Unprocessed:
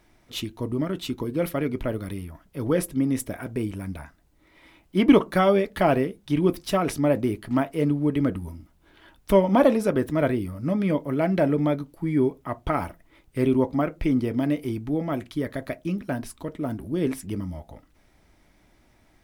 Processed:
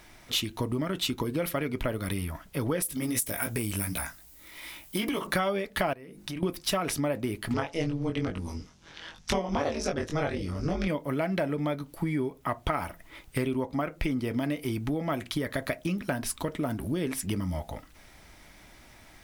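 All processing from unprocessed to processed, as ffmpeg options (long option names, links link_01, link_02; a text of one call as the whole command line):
ffmpeg -i in.wav -filter_complex "[0:a]asettb=1/sr,asplit=3[link_01][link_02][link_03];[link_01]atrim=end=2.824[link_04];[link_02]atrim=start=2.82:end=5.27,asetpts=PTS-STARTPTS,afade=type=in:duration=0.004:curve=qsin,afade=type=out:start_time=2.446:duration=0.004:curve=qsin,aemphasis=mode=production:type=75kf,flanger=delay=17:depth=3:speed=2.6,acompressor=threshold=-27dB:ratio=4:attack=3.2:release=140:knee=1:detection=peak[link_05];[link_03]atrim=start=5.266[link_06];[link_04][link_05]acrossfade=duration=0.004:curve1=hsin:curve2=qsin[link_07];[link_07][link_06]acrossfade=duration=0.004:curve1=qsin:curve2=hsin,asettb=1/sr,asplit=3[link_08][link_09][link_10];[link_08]atrim=end=5.934[link_11];[link_09]atrim=start=5.93:end=6.43,asetpts=PTS-STARTPTS,afade=type=in:duration=0.004:curve=qsin,afade=type=out:start_time=0.496:duration=0.004:curve=qsin,equalizer=frequency=3300:width_type=o:width=0.23:gain=-7,bandreject=frequency=50:width_type=h:width=6,bandreject=frequency=100:width_type=h:width=6,bandreject=frequency=150:width_type=h:width=6,bandreject=frequency=200:width_type=h:width=6,bandreject=frequency=250:width_type=h:width=6,bandreject=frequency=300:width_type=h:width=6,bandreject=frequency=350:width_type=h:width=6,acompressor=threshold=-43dB:ratio=3:attack=3.2:release=140:knee=1:detection=peak[link_12];[link_10]atrim=start=6.426[link_13];[link_11][link_12]acrossfade=duration=0.004:curve1=hsin:curve2=qsin[link_14];[link_14][link_13]acrossfade=duration=0.004:curve1=qsin:curve2=hsin,asettb=1/sr,asplit=3[link_15][link_16][link_17];[link_15]atrim=end=7.544[link_18];[link_16]atrim=start=7.54:end=10.88,asetpts=PTS-STARTPTS,afade=type=in:duration=0.004:curve=qsin,afade=type=out:start_time=3.336:duration=0.004:curve=qsin,lowpass=frequency=5900:width_type=q:width=3.4,tremolo=f=160:d=0.974,asplit=2[link_19][link_20];[link_20]adelay=21,volume=-2.5dB[link_21];[link_19][link_21]amix=inputs=2:normalize=0,atrim=end_sample=147294[link_22];[link_17]atrim=start=10.876[link_23];[link_18][link_22]acrossfade=duration=0.004:curve1=hsin:curve2=qsin[link_24];[link_24][link_23]acrossfade=duration=0.004:curve1=qsin:curve2=hsin,tiltshelf=frequency=970:gain=-3.5,acompressor=threshold=-34dB:ratio=6,equalizer=frequency=330:width=1.5:gain=-2.5,volume=8.5dB" out.wav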